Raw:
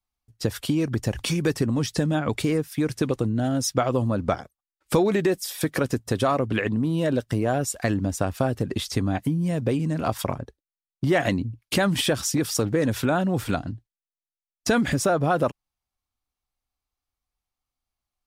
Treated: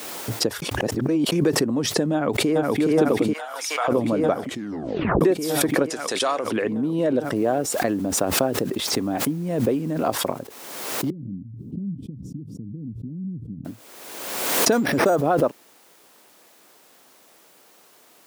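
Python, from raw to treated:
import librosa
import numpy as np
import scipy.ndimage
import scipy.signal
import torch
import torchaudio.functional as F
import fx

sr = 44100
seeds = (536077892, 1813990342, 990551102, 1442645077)

y = fx.echo_throw(x, sr, start_s=2.13, length_s=0.67, ms=420, feedback_pct=80, wet_db=-0.5)
y = fx.highpass(y, sr, hz=880.0, slope=24, at=(3.33, 3.88))
y = fx.weighting(y, sr, curve='ITU-R 468', at=(5.88, 6.51), fade=0.02)
y = fx.noise_floor_step(y, sr, seeds[0], at_s=7.36, before_db=-68, after_db=-48, tilt_db=0.0)
y = fx.cheby2_lowpass(y, sr, hz=650.0, order=4, stop_db=60, at=(11.1, 13.65))
y = fx.resample_bad(y, sr, factor=6, down='none', up='hold', at=(14.72, 15.16))
y = fx.edit(y, sr, fx.reverse_span(start_s=0.62, length_s=0.7),
    fx.tape_stop(start_s=4.39, length_s=0.82), tone=tone)
y = scipy.signal.sosfilt(scipy.signal.butter(2, 330.0, 'highpass', fs=sr, output='sos'), y)
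y = fx.tilt_shelf(y, sr, db=7.5, hz=970.0)
y = fx.pre_swell(y, sr, db_per_s=37.0)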